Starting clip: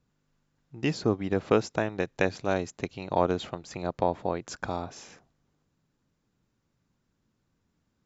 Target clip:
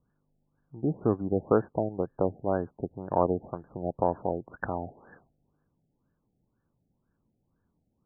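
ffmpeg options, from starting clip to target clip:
-af "aexciter=amount=6.3:drive=8.8:freq=2.1k,afftfilt=real='re*lt(b*sr/1024,810*pow(1800/810,0.5+0.5*sin(2*PI*2*pts/sr)))':imag='im*lt(b*sr/1024,810*pow(1800/810,0.5+0.5*sin(2*PI*2*pts/sr)))':win_size=1024:overlap=0.75"

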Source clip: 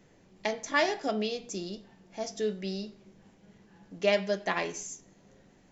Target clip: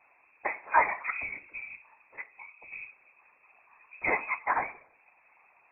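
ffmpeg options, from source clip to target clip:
-filter_complex "[0:a]asettb=1/sr,asplit=3[a][b][c];[a]atrim=end=2.214[d];[b]atrim=start=2.21:end=2.72,asetpts=PTS-STARTPTS,afade=t=in:d=0.004:c=qsin,afade=t=out:st=0.506:d=0.004:c=qsin,acompressor=threshold=-41dB:ratio=16[e];[c]atrim=start=2.716[f];[d][e]acrossfade=d=0.004:c1=hsin:c2=qsin[g];[g][f]acrossfade=d=0.004:c1=qsin:c2=hsin,asettb=1/sr,asplit=3[h][i][j];[h]atrim=end=4.444[k];[i]atrim=start=4.44:end=4.93,asetpts=PTS-STARTPTS,afade=t=in:d=0.004:c=qsin,afade=t=out:st=0.486:d=0.004:c=qsin,highpass=f=270:w=0.5412,highpass=f=270:w=1.3066[l];[j]atrim=start=4.926[m];[k][l]acrossfade=d=0.004:c1=hsin:c2=qsin[n];[n][m]acrossfade=d=0.004:c1=qsin:c2=hsin,afftfilt=real='hypot(re,im)*cos(2*PI*random(0))':imag='hypot(re,im)*sin(2*PI*random(1))':win_size=512:overlap=0.75,equalizer=f=1.7k:t=o:w=1.1:g=14,lowpass=f=2.3k:t=q:w=0.5098,lowpass=f=2.3k:t=q:w=0.6013,lowpass=f=2.3k:t=q:w=0.9,lowpass=f=2.3k:t=q:w=2.563,afreqshift=-2700"

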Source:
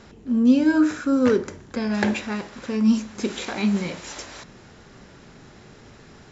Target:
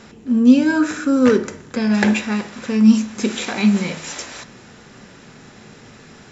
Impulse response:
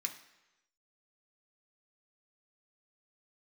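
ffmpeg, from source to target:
-filter_complex "[0:a]asplit=2[a][b];[1:a]atrim=start_sample=2205,lowshelf=f=140:g=8[c];[b][c]afir=irnorm=-1:irlink=0,volume=-4dB[d];[a][d]amix=inputs=2:normalize=0,volume=2.5dB"

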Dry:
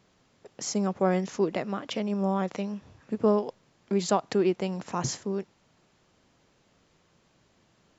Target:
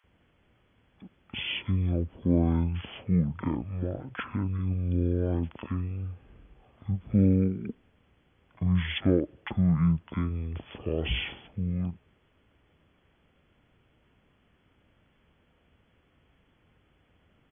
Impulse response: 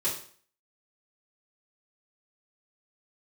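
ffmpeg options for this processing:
-filter_complex "[0:a]asetrate=20110,aresample=44100,acrossover=split=900[a][b];[a]adelay=40[c];[c][b]amix=inputs=2:normalize=0"

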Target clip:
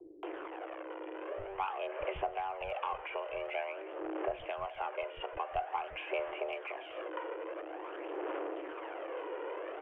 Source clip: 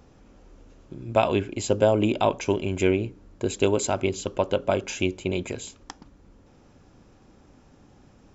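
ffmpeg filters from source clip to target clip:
-filter_complex "[0:a]aeval=exprs='val(0)+0.5*0.0282*sgn(val(0))':c=same,acrossover=split=500[a][b];[a]acompressor=threshold=-36dB:ratio=6[c];[c][b]amix=inputs=2:normalize=0,afreqshift=340,aresample=8000,asoftclip=type=tanh:threshold=-17dB,aresample=44100,highshelf=f=2.8k:g=-10,acrossover=split=120[d][e];[e]acompressor=threshold=-55dB:ratio=2[f];[d][f]amix=inputs=2:normalize=0,asetrate=37485,aresample=44100,equalizer=f=250:t=o:w=0.25:g=-14,acrossover=split=250[g][h];[h]adelay=230[i];[g][i]amix=inputs=2:normalize=0,aphaser=in_gain=1:out_gain=1:delay=2.1:decay=0.45:speed=0.48:type=sinusoidal,volume=7.5dB"

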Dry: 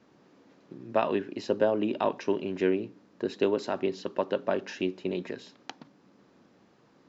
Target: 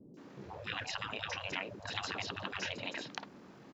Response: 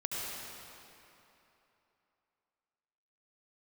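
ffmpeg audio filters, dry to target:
-filter_complex "[0:a]atempo=1.9,acrossover=split=480|4900[a][b][c];[c]adelay=140[d];[b]adelay=170[e];[a][e][d]amix=inputs=3:normalize=0,afftfilt=real='re*lt(hypot(re,im),0.0282)':imag='im*lt(hypot(re,im),0.0282)':win_size=1024:overlap=0.75,volume=8dB"

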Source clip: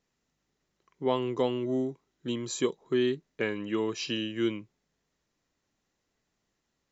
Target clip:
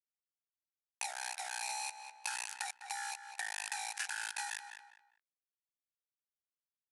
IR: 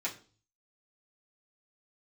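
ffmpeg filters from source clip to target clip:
-filter_complex "[0:a]afftfilt=real='real(if(between(b,1,1012),(2*floor((b-1)/92)+1)*92-b,b),0)':imag='imag(if(between(b,1,1012),(2*floor((b-1)/92)+1)*92-b,b),0)*if(between(b,1,1012),-1,1)':win_size=2048:overlap=0.75,afftfilt=real='re*between(b*sr/4096,1200,6000)':imag='im*between(b*sr/4096,1200,6000)':win_size=4096:overlap=0.75,aeval=exprs='val(0)*gte(abs(val(0)),0.0282)':c=same,equalizer=f=3.4k:w=3.5:g=14,asetrate=22050,aresample=44100,atempo=2,alimiter=limit=-22.5dB:level=0:latency=1:release=78,asplit=2[a][b];[b]adelay=202,lowpass=f=3k:p=1,volume=-13.5dB,asplit=2[c][d];[d]adelay=202,lowpass=f=3k:p=1,volume=0.27,asplit=2[e][f];[f]adelay=202,lowpass=f=3k:p=1,volume=0.27[g];[a][c][e][g]amix=inputs=4:normalize=0,acompressor=threshold=-40dB:ratio=3,aderivative,volume=14dB"

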